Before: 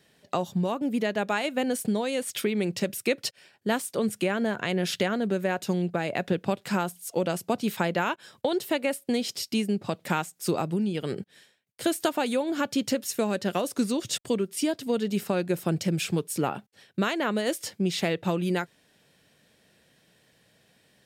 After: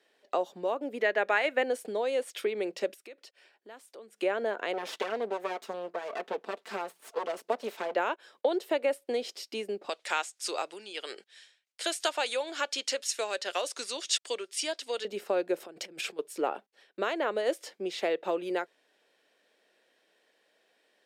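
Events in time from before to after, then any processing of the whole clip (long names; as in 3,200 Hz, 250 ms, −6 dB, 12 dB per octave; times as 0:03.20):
0:01.00–0:01.64: parametric band 1,900 Hz +10.5 dB 0.86 octaves
0:02.94–0:04.18: downward compressor 3 to 1, threshold −44 dBFS
0:04.73–0:07.95: lower of the sound and its delayed copy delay 4.5 ms
0:09.89–0:15.05: meter weighting curve ITU-R 468
0:15.60–0:16.19: compressor whose output falls as the input rises −31 dBFS, ratio −0.5
whole clip: low-pass filter 3,200 Hz 6 dB per octave; dynamic equaliser 540 Hz, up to +5 dB, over −38 dBFS, Q 1.4; high-pass filter 340 Hz 24 dB per octave; level −3.5 dB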